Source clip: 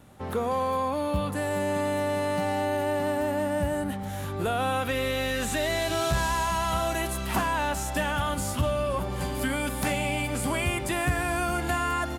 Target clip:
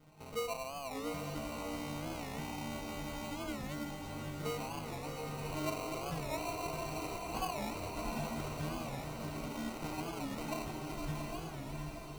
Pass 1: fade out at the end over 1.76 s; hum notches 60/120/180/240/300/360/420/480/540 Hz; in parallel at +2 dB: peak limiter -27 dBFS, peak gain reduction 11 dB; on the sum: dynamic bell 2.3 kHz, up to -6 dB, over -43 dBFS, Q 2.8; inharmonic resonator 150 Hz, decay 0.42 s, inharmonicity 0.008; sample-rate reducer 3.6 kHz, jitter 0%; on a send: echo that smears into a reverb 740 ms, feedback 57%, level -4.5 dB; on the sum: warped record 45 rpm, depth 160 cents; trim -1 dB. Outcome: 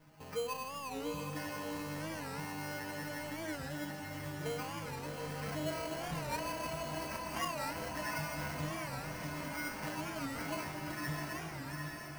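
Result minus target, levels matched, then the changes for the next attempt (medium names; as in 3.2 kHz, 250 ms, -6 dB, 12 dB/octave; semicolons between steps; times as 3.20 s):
sample-rate reducer: distortion -6 dB
change: sample-rate reducer 1.7 kHz, jitter 0%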